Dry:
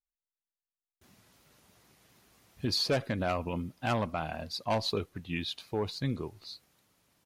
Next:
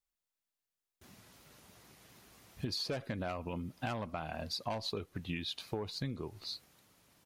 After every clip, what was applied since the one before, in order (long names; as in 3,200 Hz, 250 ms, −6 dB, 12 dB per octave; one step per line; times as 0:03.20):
downward compressor 10 to 1, threshold −38 dBFS, peak gain reduction 13.5 dB
level +3.5 dB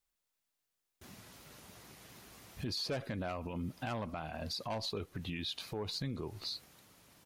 brickwall limiter −34.5 dBFS, peak gain reduction 11 dB
level +4.5 dB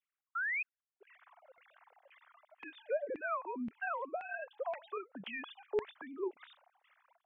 three sine waves on the formant tracks
auto-filter band-pass saw down 1.9 Hz 430–2,300 Hz
sound drawn into the spectrogram rise, 0:00.35–0:00.63, 1,300–2,600 Hz −43 dBFS
level +8 dB